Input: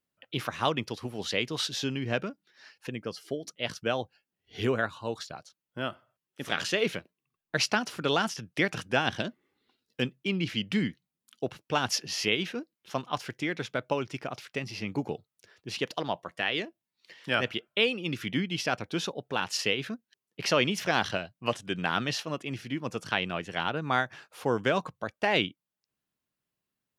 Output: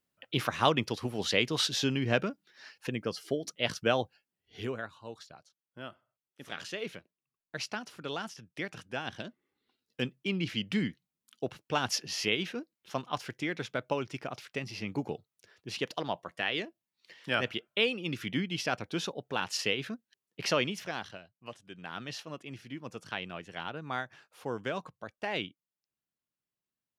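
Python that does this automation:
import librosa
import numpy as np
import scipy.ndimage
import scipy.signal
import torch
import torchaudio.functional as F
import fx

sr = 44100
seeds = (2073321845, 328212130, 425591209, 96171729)

y = fx.gain(x, sr, db=fx.line((4.0, 2.0), (4.82, -10.5), (8.98, -10.5), (10.16, -2.5), (20.51, -2.5), (21.17, -15.5), (21.76, -15.5), (22.17, -8.5)))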